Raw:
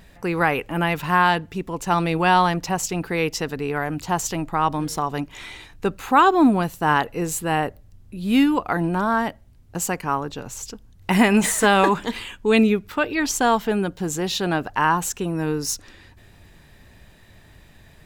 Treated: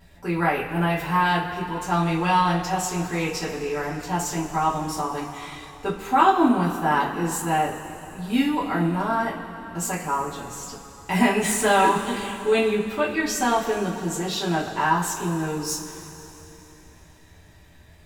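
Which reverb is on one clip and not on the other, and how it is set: two-slope reverb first 0.27 s, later 3.6 s, from -18 dB, DRR -7.5 dB; gain -10.5 dB

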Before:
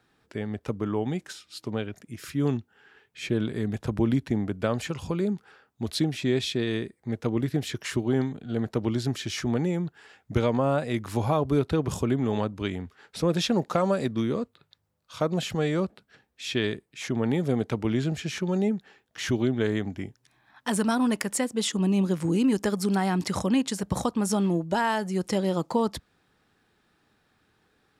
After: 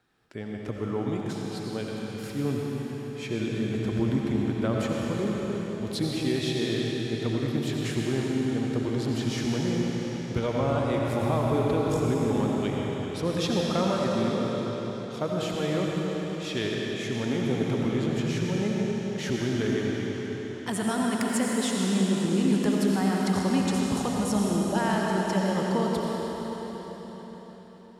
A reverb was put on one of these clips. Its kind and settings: digital reverb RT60 5 s, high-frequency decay 0.95×, pre-delay 45 ms, DRR -3 dB; gain -4.5 dB

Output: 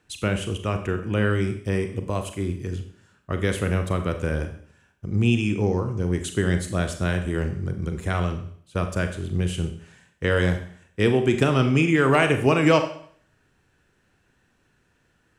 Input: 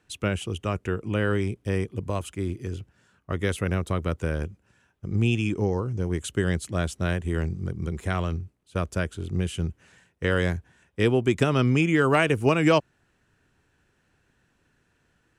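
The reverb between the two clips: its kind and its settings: Schroeder reverb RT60 0.56 s, combs from 30 ms, DRR 6.5 dB; gain +1.5 dB

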